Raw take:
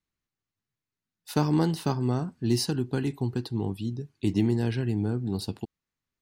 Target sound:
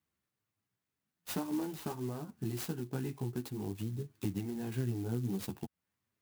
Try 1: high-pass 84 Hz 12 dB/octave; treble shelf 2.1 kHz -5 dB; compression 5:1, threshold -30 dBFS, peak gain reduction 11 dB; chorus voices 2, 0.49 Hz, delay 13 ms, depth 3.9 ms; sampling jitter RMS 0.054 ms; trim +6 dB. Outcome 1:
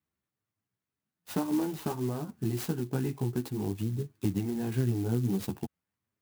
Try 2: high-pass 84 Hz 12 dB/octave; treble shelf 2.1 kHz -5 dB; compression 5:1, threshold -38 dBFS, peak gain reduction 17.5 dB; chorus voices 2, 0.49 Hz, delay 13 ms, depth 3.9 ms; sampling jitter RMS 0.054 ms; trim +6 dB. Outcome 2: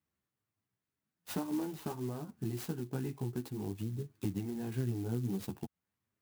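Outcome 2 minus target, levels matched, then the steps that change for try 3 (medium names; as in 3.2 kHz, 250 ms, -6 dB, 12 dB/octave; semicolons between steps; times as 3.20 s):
4 kHz band -2.5 dB
remove: treble shelf 2.1 kHz -5 dB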